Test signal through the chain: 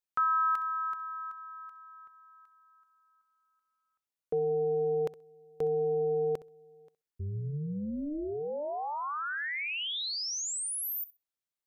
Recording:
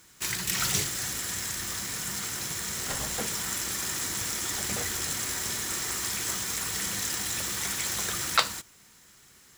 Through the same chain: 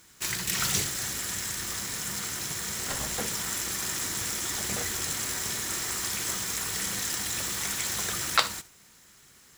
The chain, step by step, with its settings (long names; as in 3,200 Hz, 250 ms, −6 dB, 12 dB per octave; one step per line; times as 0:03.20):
amplitude modulation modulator 300 Hz, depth 30%
flutter between parallel walls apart 11.1 metres, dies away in 0.22 s
level +2 dB